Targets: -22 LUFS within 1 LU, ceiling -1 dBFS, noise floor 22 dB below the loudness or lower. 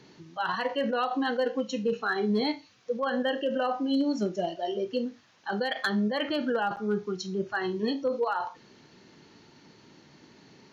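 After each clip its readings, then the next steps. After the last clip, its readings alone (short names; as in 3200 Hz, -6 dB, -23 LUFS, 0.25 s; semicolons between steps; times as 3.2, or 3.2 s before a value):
clipped 0.2%; flat tops at -19.5 dBFS; dropouts 1; longest dropout 8.6 ms; loudness -29.5 LUFS; peak -19.5 dBFS; loudness target -22.0 LUFS
-> clip repair -19.5 dBFS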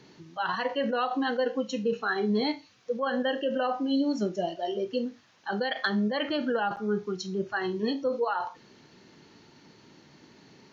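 clipped 0.0%; dropouts 1; longest dropout 8.6 ms
-> interpolate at 6.76, 8.6 ms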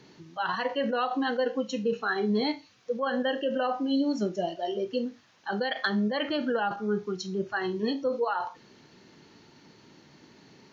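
dropouts 0; loudness -29.5 LUFS; peak -13.5 dBFS; loudness target -22.0 LUFS
-> gain +7.5 dB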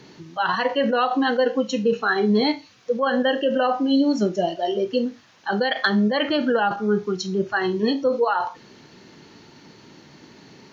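loudness -22.0 LUFS; peak -6.0 dBFS; noise floor -50 dBFS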